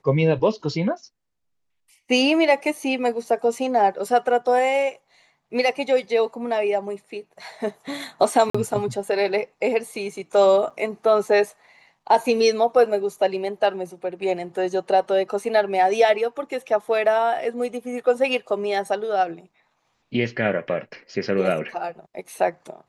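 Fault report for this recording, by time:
8.5–8.54 gap 45 ms
10.7–10.71 gap 5.9 ms

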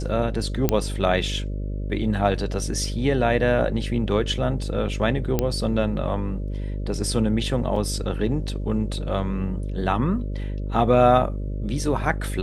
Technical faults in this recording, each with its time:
buzz 50 Hz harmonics 12 -28 dBFS
0.69 pop -6 dBFS
5.39 pop -8 dBFS
7.76 gap 3.5 ms

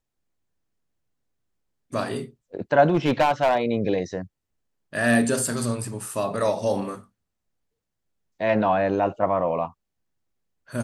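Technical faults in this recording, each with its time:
2.86–3.61 clipped -14.5 dBFS

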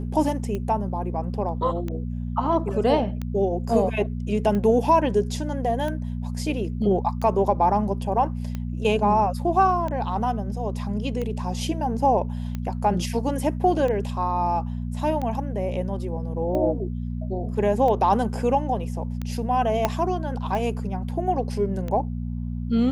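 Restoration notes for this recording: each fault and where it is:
hum 60 Hz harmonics 4 -29 dBFS
tick 45 rpm -18 dBFS
19.85 pop -7 dBFS

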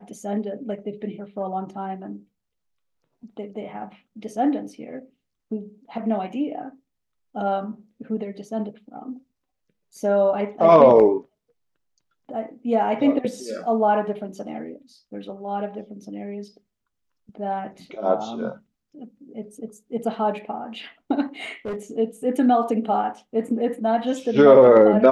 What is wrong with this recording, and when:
21.43–21.76 clipped -25 dBFS

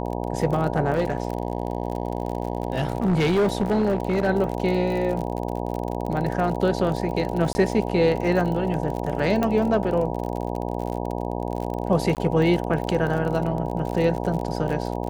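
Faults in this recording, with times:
buzz 60 Hz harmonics 16 -28 dBFS
crackle 41/s -28 dBFS
0.93–4.29 clipped -16.5 dBFS
7.53–7.55 gap 20 ms
9.43 pop -11 dBFS
12.15–12.17 gap 18 ms

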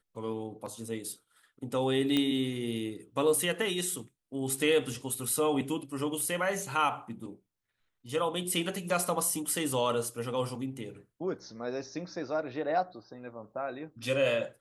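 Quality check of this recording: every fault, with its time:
2.17 pop -15 dBFS

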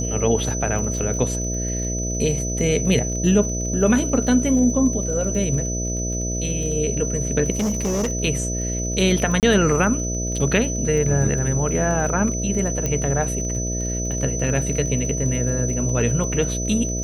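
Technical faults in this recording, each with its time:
buzz 60 Hz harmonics 11 -26 dBFS
crackle 30/s -29 dBFS
tone 6000 Hz -27 dBFS
7.5–8.12 clipped -18.5 dBFS
9.4–9.43 gap 28 ms
12.86 pop -10 dBFS

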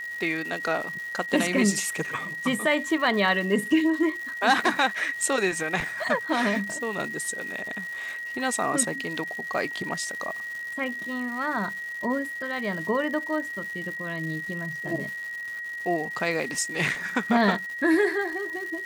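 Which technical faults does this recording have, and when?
crackle 350/s -35 dBFS
tone 1900 Hz -32 dBFS

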